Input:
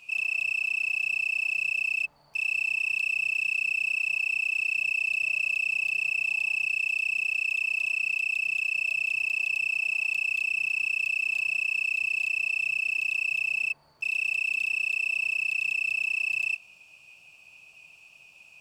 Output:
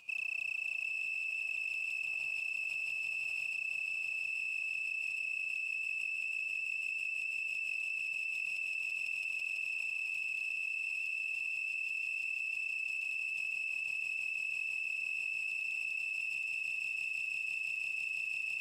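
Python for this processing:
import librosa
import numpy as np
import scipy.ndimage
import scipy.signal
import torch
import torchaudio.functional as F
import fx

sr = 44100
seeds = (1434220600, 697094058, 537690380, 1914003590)

y = fx.tremolo_random(x, sr, seeds[0], hz=3.5, depth_pct=90)
y = fx.echo_swell(y, sr, ms=166, loudest=8, wet_db=-6.5)
y = fx.level_steps(y, sr, step_db=21)
y = F.gain(torch.from_numpy(y), 4.5).numpy()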